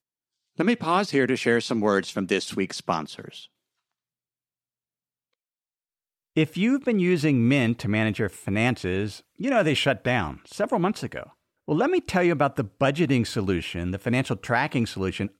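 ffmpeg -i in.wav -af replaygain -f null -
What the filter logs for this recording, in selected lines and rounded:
track_gain = +5.0 dB
track_peak = 0.302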